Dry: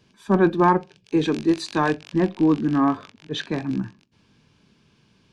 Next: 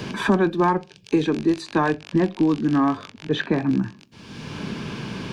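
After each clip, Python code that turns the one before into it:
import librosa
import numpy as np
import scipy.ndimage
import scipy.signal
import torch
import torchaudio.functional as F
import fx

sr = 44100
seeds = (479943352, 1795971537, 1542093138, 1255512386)

y = fx.band_squash(x, sr, depth_pct=100)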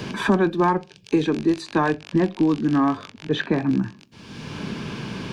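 y = x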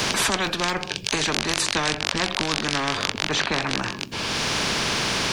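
y = fx.spectral_comp(x, sr, ratio=4.0)
y = y * 10.0 ** (5.5 / 20.0)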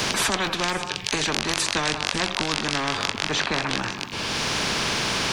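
y = fx.echo_stepped(x, sr, ms=182, hz=1000.0, octaves=1.4, feedback_pct=70, wet_db=-7.0)
y = y * 10.0 ** (-1.0 / 20.0)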